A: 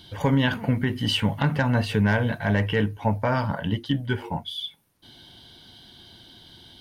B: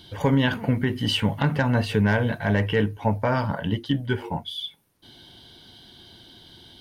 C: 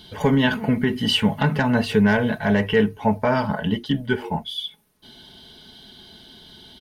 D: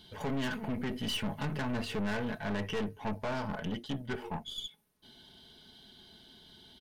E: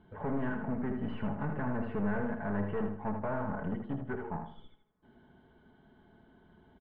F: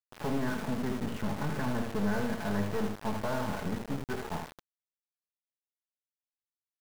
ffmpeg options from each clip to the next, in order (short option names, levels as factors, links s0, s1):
-af "equalizer=f=400:t=o:w=0.77:g=3"
-af "aecho=1:1:4.7:0.55,volume=1.26"
-af "aeval=exprs='(tanh(14.1*val(0)+0.55)-tanh(0.55))/14.1':c=same,volume=0.398"
-filter_complex "[0:a]lowpass=f=1600:w=0.5412,lowpass=f=1600:w=1.3066,asplit=2[s0][s1];[s1]aecho=0:1:79|158|237|316:0.473|0.147|0.0455|0.0141[s2];[s0][s2]amix=inputs=2:normalize=0"
-af "aecho=1:1:1073:0.141,aeval=exprs='val(0)*gte(abs(val(0)),0.0126)':c=same,volume=1.26"